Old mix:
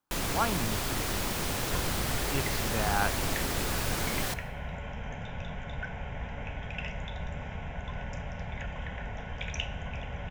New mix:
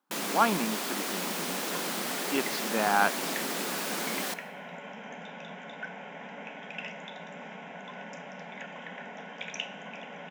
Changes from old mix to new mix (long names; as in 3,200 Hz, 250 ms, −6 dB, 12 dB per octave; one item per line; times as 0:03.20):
speech +5.5 dB
master: add linear-phase brick-wall high-pass 170 Hz